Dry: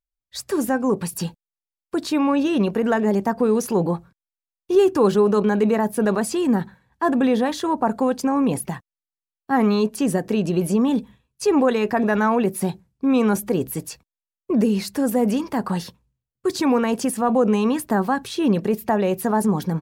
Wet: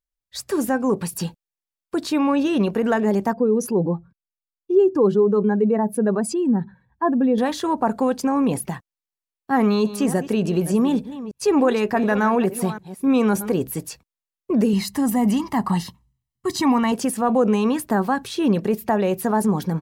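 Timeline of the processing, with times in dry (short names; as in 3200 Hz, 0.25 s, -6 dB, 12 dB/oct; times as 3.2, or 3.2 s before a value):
3.33–7.38 spectral contrast raised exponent 1.5
9.55–13.52 reverse delay 0.294 s, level -13.5 dB
14.73–16.92 comb 1 ms, depth 71%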